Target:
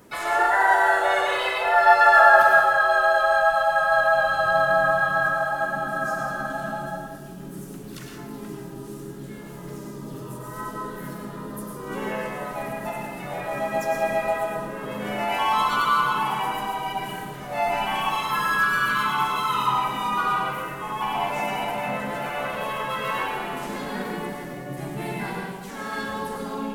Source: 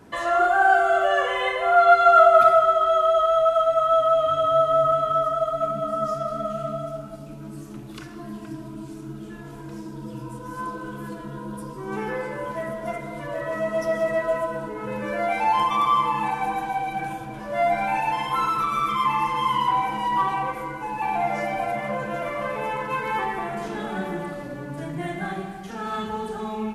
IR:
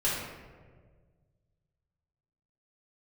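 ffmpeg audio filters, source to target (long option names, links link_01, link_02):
-filter_complex "[0:a]asplit=3[link_01][link_02][link_03];[link_02]asetrate=37084,aresample=44100,atempo=1.18921,volume=-13dB[link_04];[link_03]asetrate=55563,aresample=44100,atempo=0.793701,volume=-1dB[link_05];[link_01][link_04][link_05]amix=inputs=3:normalize=0,crystalizer=i=1.5:c=0,asplit=2[link_06][link_07];[1:a]atrim=start_sample=2205,atrim=end_sample=4410,adelay=98[link_08];[link_07][link_08]afir=irnorm=-1:irlink=0,volume=-10dB[link_09];[link_06][link_09]amix=inputs=2:normalize=0,volume=-5.5dB"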